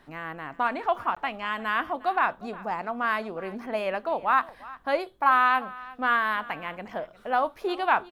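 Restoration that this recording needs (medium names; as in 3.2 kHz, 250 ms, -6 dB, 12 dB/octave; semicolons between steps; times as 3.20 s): interpolate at 1.15 s, 15 ms; inverse comb 356 ms -19.5 dB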